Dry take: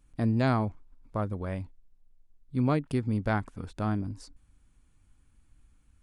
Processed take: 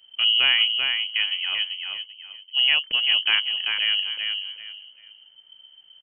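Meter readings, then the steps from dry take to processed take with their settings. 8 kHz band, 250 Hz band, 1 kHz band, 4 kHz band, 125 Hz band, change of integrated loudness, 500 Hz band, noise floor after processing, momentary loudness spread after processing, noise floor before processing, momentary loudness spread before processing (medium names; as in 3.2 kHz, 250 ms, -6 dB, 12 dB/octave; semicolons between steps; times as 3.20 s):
no reading, under -25 dB, -5.0 dB, +35.0 dB, under -30 dB, +10.0 dB, under -10 dB, -54 dBFS, 16 LU, -64 dBFS, 13 LU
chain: feedback delay 389 ms, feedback 25%, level -5 dB; frequency inversion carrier 3.1 kHz; trim +5.5 dB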